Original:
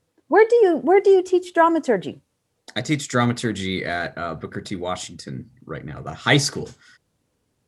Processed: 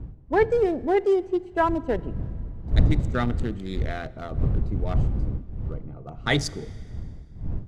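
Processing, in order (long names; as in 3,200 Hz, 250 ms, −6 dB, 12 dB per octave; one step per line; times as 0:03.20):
adaptive Wiener filter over 25 samples
wind on the microphone 89 Hz −21 dBFS
four-comb reverb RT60 2 s, combs from 27 ms, DRR 20 dB
level −6 dB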